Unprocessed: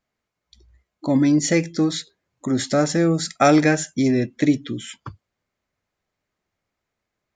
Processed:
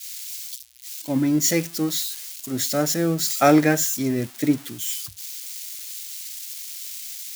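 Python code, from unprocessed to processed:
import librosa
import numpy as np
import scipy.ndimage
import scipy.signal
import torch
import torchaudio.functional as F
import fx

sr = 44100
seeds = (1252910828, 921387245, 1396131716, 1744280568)

y = x + 0.5 * 10.0 ** (-16.5 / 20.0) * np.diff(np.sign(x), prepend=np.sign(x[:1]))
y = fx.band_widen(y, sr, depth_pct=100)
y = y * librosa.db_to_amplitude(-5.0)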